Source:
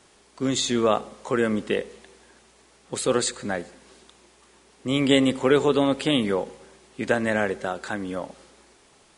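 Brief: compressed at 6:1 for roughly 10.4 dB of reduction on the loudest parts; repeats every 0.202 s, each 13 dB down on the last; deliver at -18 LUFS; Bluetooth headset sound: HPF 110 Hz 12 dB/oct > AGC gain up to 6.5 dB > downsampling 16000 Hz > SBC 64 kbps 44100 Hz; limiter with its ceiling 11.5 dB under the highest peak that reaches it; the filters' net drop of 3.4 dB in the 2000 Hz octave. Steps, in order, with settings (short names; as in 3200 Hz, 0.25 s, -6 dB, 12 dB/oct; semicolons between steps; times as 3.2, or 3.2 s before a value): bell 2000 Hz -4.5 dB; compressor 6:1, threshold -25 dBFS; limiter -25 dBFS; HPF 110 Hz 12 dB/oct; feedback echo 0.202 s, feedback 22%, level -13 dB; AGC gain up to 6.5 dB; downsampling 16000 Hz; gain +18 dB; SBC 64 kbps 44100 Hz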